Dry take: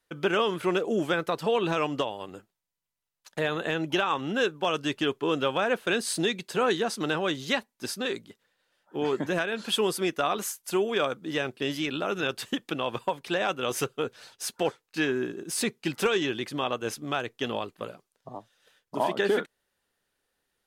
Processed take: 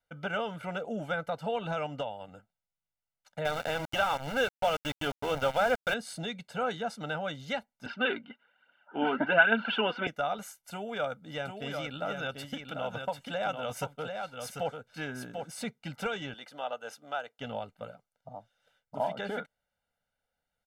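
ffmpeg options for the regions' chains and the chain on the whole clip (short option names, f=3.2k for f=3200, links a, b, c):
-filter_complex "[0:a]asettb=1/sr,asplit=3[a][b][c];[a]atrim=end=3.454[d];[b]atrim=start=3.45:end=5.94,asetpts=PTS-STARTPTS,afade=t=in:d=0.004:c=qsin,afade=t=out:st=2.486:d=0.004:c=qsin,equalizer=f=180:w=3.8:g=-8,acontrast=26,aeval=exprs='val(0)*gte(abs(val(0)),0.0562)':c=same[e];[c]atrim=start=5.936[f];[d][e]acrossfade=d=0.004:c1=hsin:c2=qsin[g];[g][f]acrossfade=d=0.004:c1=qsin:c2=hsin,asettb=1/sr,asplit=3[h][i][j];[h]atrim=end=7.864[k];[i]atrim=start=7.86:end=10.07,asetpts=PTS-STARTPTS,afade=t=in:d=0.004:c=qsin,afade=t=out:st=2.206:d=0.004:c=qsin,acontrast=29,aphaser=in_gain=1:out_gain=1:delay=4.3:decay=0.49:speed=1.2:type=triangular,highpass=230,equalizer=f=240:t=q:w=4:g=8,equalizer=f=360:t=q:w=4:g=10,equalizer=f=510:t=q:w=4:g=-4,equalizer=f=970:t=q:w=4:g=6,equalizer=f=1.5k:t=q:w=4:g=10,equalizer=f=2.8k:t=q:w=4:g=10,lowpass=f=3.3k:w=0.5412,lowpass=f=3.3k:w=1.3066[l];[j]atrim=start=10.066[m];[k][l]acrossfade=d=0.004:c1=hsin:c2=qsin[n];[n][m]acrossfade=d=0.004:c1=qsin:c2=hsin,asettb=1/sr,asplit=3[o][p][q];[o]atrim=end=10.714[r];[p]atrim=start=10.71:end=15.48,asetpts=PTS-STARTPTS,afade=t=in:d=0.004:c=qsin,afade=t=out:st=4.766:d=0.004:c=qsin,highshelf=f=8.3k:g=5.5,aecho=1:1:743:0.531,atrim=end_sample=210357[s];[q]atrim=start=15.476[t];[r][s]acrossfade=d=0.004:c1=hsin:c2=qsin[u];[u][t]acrossfade=d=0.004:c1=qsin:c2=hsin,asettb=1/sr,asplit=3[v][w][x];[v]atrim=end=16.344[y];[w]atrim=start=16.34:end=17.39,asetpts=PTS-STARTPTS,afade=t=in:d=0.004:c=qsin,afade=t=out:st=1.046:d=0.004:c=qsin,highpass=430,bandreject=f=2.2k:w=9.5[z];[x]atrim=start=17.386[aa];[y][z]acrossfade=d=0.004:c1=hsin:c2=qsin[ab];[ab][aa]acrossfade=d=0.004:c1=qsin:c2=hsin,highshelf=f=3.1k:g=-10.5,aecho=1:1:1.4:0.94,volume=-7dB"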